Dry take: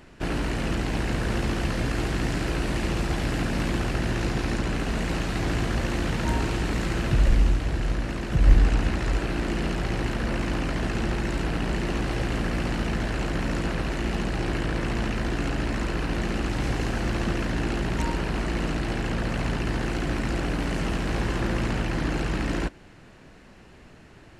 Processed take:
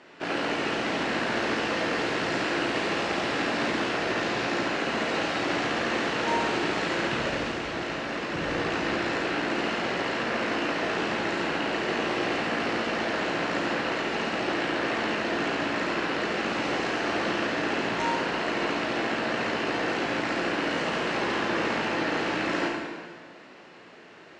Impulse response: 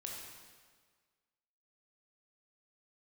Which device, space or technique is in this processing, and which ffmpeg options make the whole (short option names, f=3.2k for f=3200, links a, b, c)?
supermarket ceiling speaker: -filter_complex "[0:a]highpass=350,lowpass=5.3k[a];[1:a]atrim=start_sample=2205[b];[a][b]afir=irnorm=-1:irlink=0,lowpass=9.3k,volume=7dB"